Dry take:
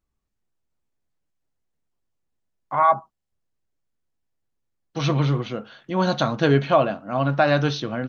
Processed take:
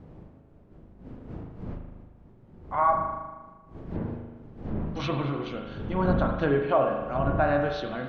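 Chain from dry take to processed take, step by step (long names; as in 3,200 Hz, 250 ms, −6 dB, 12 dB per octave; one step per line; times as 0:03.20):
wind on the microphone 170 Hz −28 dBFS
treble cut that deepens with the level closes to 1,600 Hz, closed at −15.5 dBFS
low-shelf EQ 250 Hz −6.5 dB
spring reverb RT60 1.3 s, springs 38 ms, chirp 70 ms, DRR 3 dB
level −5 dB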